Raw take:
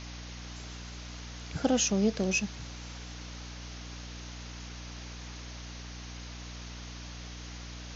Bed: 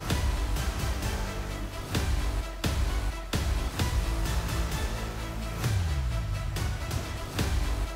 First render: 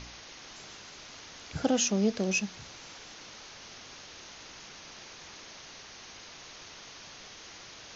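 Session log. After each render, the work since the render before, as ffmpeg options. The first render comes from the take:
ffmpeg -i in.wav -af "bandreject=frequency=60:width_type=h:width=4,bandreject=frequency=120:width_type=h:width=4,bandreject=frequency=180:width_type=h:width=4,bandreject=frequency=240:width_type=h:width=4,bandreject=frequency=300:width_type=h:width=4" out.wav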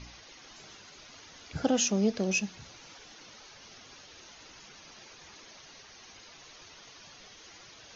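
ffmpeg -i in.wav -af "afftdn=noise_reduction=9:noise_floor=-49" out.wav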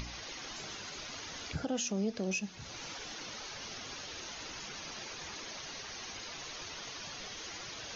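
ffmpeg -i in.wav -af "acompressor=mode=upward:threshold=-35dB:ratio=2.5,alimiter=level_in=1dB:limit=-24dB:level=0:latency=1:release=226,volume=-1dB" out.wav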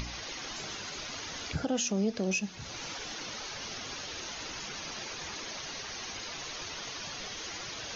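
ffmpeg -i in.wav -af "volume=4dB" out.wav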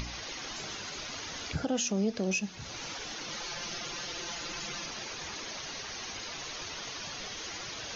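ffmpeg -i in.wav -filter_complex "[0:a]asettb=1/sr,asplit=3[link_01][link_02][link_03];[link_01]atrim=end=3.294[link_04];[link_02]atrim=start=3.29:end=4.86,asetpts=PTS-STARTPTS,afade=type=in:duration=0.004:curve=qsin,afade=type=out:start_time=1.566:duration=0.004:curve=qsin,aecho=1:1:5.8:0.71,atrim=end_sample=69237[link_05];[link_03]atrim=start=4.856[link_06];[link_04][link_05]acrossfade=duration=0.004:curve1=hsin:curve2=qsin[link_07];[link_07][link_06]acrossfade=duration=0.004:curve1=qsin:curve2=hsin" out.wav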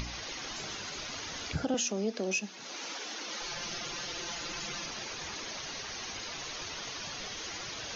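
ffmpeg -i in.wav -filter_complex "[0:a]asettb=1/sr,asplit=3[link_01][link_02][link_03];[link_01]atrim=end=1.744[link_04];[link_02]atrim=start=1.74:end=3.42,asetpts=PTS-STARTPTS,afade=type=in:duration=0.004:curve=qsin,afade=type=out:start_time=1.676:duration=0.004:curve=qsin,highpass=frequency=230:width=0.5412,highpass=frequency=230:width=1.3066[link_05];[link_03]atrim=start=3.416[link_06];[link_04][link_05]acrossfade=duration=0.004:curve1=hsin:curve2=qsin[link_07];[link_07][link_06]acrossfade=duration=0.004:curve1=qsin:curve2=hsin" out.wav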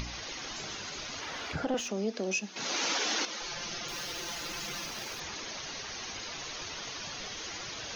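ffmpeg -i in.wav -filter_complex "[0:a]asettb=1/sr,asplit=3[link_01][link_02][link_03];[link_01]atrim=end=1.214[link_04];[link_02]atrim=start=1.21:end=1.91,asetpts=PTS-STARTPTS,afade=type=in:duration=0.004:curve=qsin,afade=type=out:start_time=0.696:duration=0.004:curve=qsin,asplit=2[link_05][link_06];[link_06]highpass=frequency=720:poles=1,volume=13dB,asoftclip=type=tanh:threshold=-20.5dB[link_07];[link_05][link_07]amix=inputs=2:normalize=0,lowpass=frequency=1600:poles=1,volume=-6dB[link_08];[link_03]atrim=start=1.906[link_09];[link_04][link_08]acrossfade=duration=0.004:curve1=hsin:curve2=qsin[link_10];[link_10][link_09]acrossfade=duration=0.004:curve1=qsin:curve2=hsin,asettb=1/sr,asplit=3[link_11][link_12][link_13];[link_11]atrim=end=3.884[link_14];[link_12]atrim=start=3.88:end=5.2,asetpts=PTS-STARTPTS,afade=type=in:duration=0.004:curve=qsin,afade=type=out:start_time=1.316:duration=0.004:curve=qsin,acrusher=bits=2:mode=log:mix=0:aa=0.000001[link_15];[link_13]atrim=start=5.196[link_16];[link_14][link_15]acrossfade=duration=0.004:curve1=hsin:curve2=qsin[link_17];[link_17][link_16]acrossfade=duration=0.004:curve1=qsin:curve2=hsin,asplit=3[link_18][link_19][link_20];[link_18]atrim=end=2.562[link_21];[link_19]atrim=start=2.558:end=3.252,asetpts=PTS-STARTPTS,volume=9.5dB[link_22];[link_20]atrim=start=3.248[link_23];[link_21][link_22]acrossfade=duration=0.004:curve1=hsin:curve2=hsin[link_24];[link_24][link_23]acrossfade=duration=0.004:curve1=hsin:curve2=hsin" out.wav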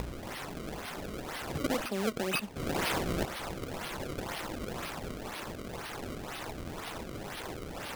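ffmpeg -i in.wav -af "acrusher=samples=29:mix=1:aa=0.000001:lfo=1:lforange=46.4:lforate=2" out.wav

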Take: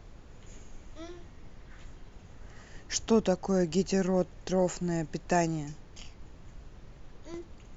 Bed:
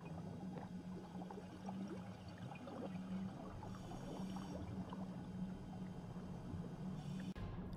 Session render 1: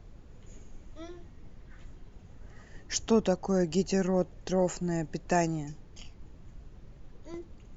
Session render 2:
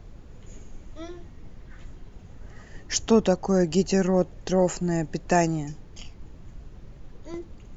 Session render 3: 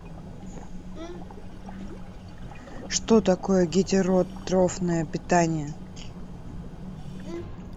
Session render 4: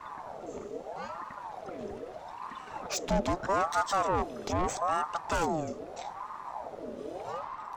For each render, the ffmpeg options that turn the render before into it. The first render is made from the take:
ffmpeg -i in.wav -af "afftdn=noise_reduction=6:noise_floor=-52" out.wav
ffmpeg -i in.wav -af "volume=5.5dB" out.wav
ffmpeg -i in.wav -i bed.wav -filter_complex "[1:a]volume=7.5dB[link_01];[0:a][link_01]amix=inputs=2:normalize=0" out.wav
ffmpeg -i in.wav -filter_complex "[0:a]acrossover=split=200[link_01][link_02];[link_02]asoftclip=type=tanh:threshold=-25.5dB[link_03];[link_01][link_03]amix=inputs=2:normalize=0,aeval=exprs='val(0)*sin(2*PI*730*n/s+730*0.45/0.79*sin(2*PI*0.79*n/s))':channel_layout=same" out.wav

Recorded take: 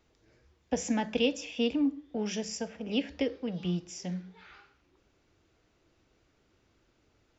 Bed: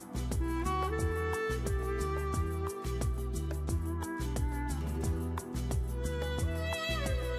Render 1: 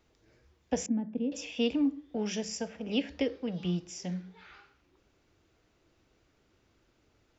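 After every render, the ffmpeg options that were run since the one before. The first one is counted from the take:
ffmpeg -i in.wav -filter_complex "[0:a]asettb=1/sr,asplit=3[link_01][link_02][link_03];[link_01]atrim=end=0.864[link_04];[link_02]atrim=start=0.86:end=1.32,asetpts=PTS-STARTPTS,afade=type=in:duration=0.004:curve=qsin,afade=type=out:start_time=0.456:duration=0.004:curve=qsin,bandpass=frequency=220:width_type=q:width=1.8[link_05];[link_03]atrim=start=1.316[link_06];[link_04][link_05]acrossfade=duration=0.004:curve1=hsin:curve2=qsin[link_07];[link_07][link_06]acrossfade=duration=0.004:curve1=qsin:curve2=hsin" out.wav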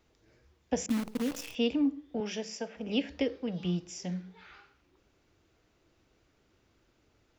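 ffmpeg -i in.wav -filter_complex "[0:a]asettb=1/sr,asplit=3[link_01][link_02][link_03];[link_01]atrim=end=0.894[link_04];[link_02]atrim=start=0.89:end=1.55,asetpts=PTS-STARTPTS,afade=type=in:duration=0.004:curve=qsin,afade=type=out:start_time=0.656:duration=0.004:curve=qsin,acrusher=bits=7:dc=4:mix=0:aa=0.000001[link_05];[link_03]atrim=start=1.546[link_06];[link_04][link_05]acrossfade=duration=0.004:curve1=hsin:curve2=qsin[link_07];[link_07][link_06]acrossfade=duration=0.004:curve1=qsin:curve2=hsin,asettb=1/sr,asplit=3[link_08][link_09][link_10];[link_08]atrim=end=2.204[link_11];[link_09]atrim=start=2.2:end=2.77,asetpts=PTS-STARTPTS,afade=type=in:duration=0.004:curve=qsin,afade=type=out:start_time=0.566:duration=0.004:curve=qsin,highpass=250,lowpass=5200[link_12];[link_10]atrim=start=2.766[link_13];[link_11][link_12]acrossfade=duration=0.004:curve1=hsin:curve2=qsin[link_14];[link_14][link_13]acrossfade=duration=0.004:curve1=qsin:curve2=hsin" out.wav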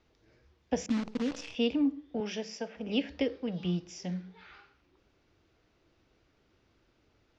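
ffmpeg -i in.wav -af "lowpass=frequency=5900:width=0.5412,lowpass=frequency=5900:width=1.3066" out.wav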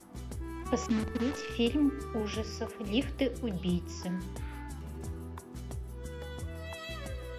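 ffmpeg -i in.wav -i bed.wav -filter_complex "[1:a]volume=-7dB[link_01];[0:a][link_01]amix=inputs=2:normalize=0" out.wav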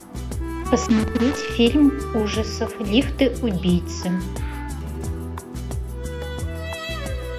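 ffmpeg -i in.wav -af "volume=12dB" out.wav

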